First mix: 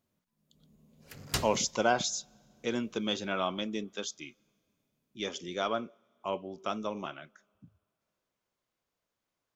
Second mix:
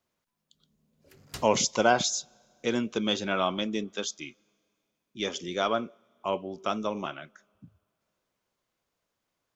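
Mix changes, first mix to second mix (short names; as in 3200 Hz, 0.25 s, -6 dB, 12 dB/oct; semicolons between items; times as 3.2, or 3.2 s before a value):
speech +4.5 dB; background -9.0 dB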